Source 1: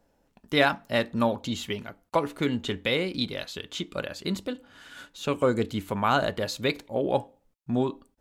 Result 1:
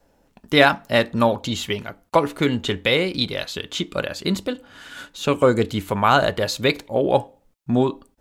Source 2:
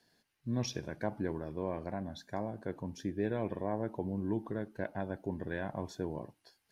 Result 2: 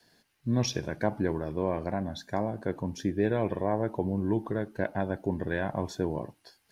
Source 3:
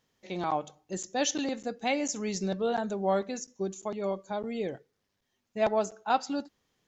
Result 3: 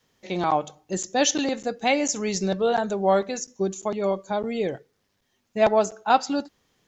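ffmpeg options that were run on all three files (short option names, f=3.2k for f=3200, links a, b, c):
-af "adynamicequalizer=threshold=0.00631:dfrequency=240:dqfactor=2.2:tfrequency=240:tqfactor=2.2:attack=5:release=100:ratio=0.375:range=2.5:mode=cutabove:tftype=bell,volume=7.5dB"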